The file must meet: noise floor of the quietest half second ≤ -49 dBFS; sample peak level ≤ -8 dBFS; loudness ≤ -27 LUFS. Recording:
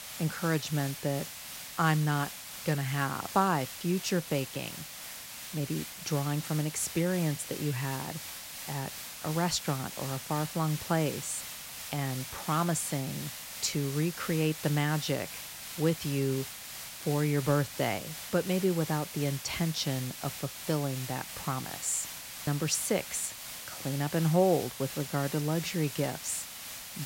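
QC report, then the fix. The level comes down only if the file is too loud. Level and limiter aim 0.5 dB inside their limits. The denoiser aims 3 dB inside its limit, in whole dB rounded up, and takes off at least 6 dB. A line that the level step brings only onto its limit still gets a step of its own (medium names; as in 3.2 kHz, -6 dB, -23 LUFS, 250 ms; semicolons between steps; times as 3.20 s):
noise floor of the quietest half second -44 dBFS: fail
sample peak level -11.0 dBFS: pass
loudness -32.0 LUFS: pass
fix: noise reduction 8 dB, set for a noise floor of -44 dBFS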